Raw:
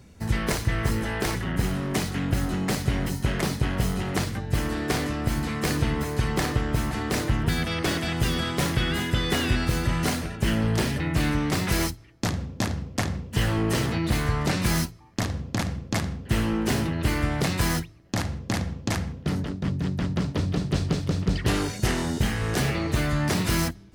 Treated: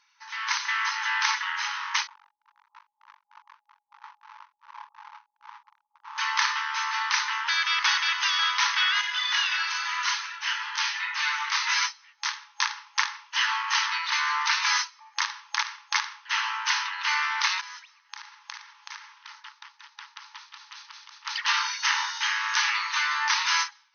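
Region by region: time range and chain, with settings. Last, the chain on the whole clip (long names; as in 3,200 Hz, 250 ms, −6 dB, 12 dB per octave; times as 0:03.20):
0:02.07–0:06.18: Butterworth low-pass 510 Hz 96 dB per octave + compressor whose output falls as the input rises −31 dBFS, ratio −0.5 + hard clipping −29.5 dBFS
0:09.01–0:12.57: high-pass filter 770 Hz 6 dB per octave + micro pitch shift up and down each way 14 cents
0:17.61–0:21.25: low-shelf EQ 190 Hz −6.5 dB + downward compressor 16 to 1, threshold −40 dBFS
whole clip: automatic gain control gain up to 13.5 dB; brick-wall band-pass 830–6,400 Hz; every ending faded ahead of time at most 270 dB per second; level −3.5 dB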